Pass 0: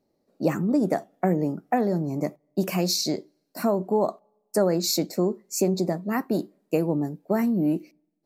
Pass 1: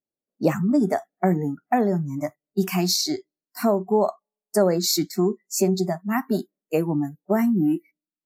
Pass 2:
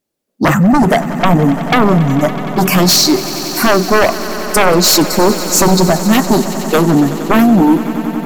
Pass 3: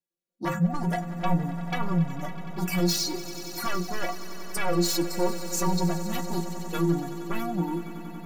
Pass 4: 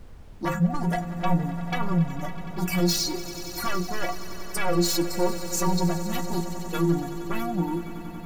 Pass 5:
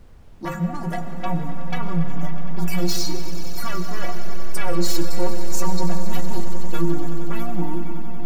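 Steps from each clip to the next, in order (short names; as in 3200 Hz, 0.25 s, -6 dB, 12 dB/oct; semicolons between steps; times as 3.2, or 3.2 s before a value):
spectral noise reduction 27 dB; gain +3 dB
sine folder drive 13 dB, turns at -6 dBFS; swelling echo 93 ms, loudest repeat 5, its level -17 dB
metallic resonator 170 Hz, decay 0.21 s, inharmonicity 0.008; gain -8 dB
added noise brown -45 dBFS; gain +1.5 dB
digital reverb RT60 4.5 s, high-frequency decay 0.25×, pre-delay 80 ms, DRR 7 dB; gain -1.5 dB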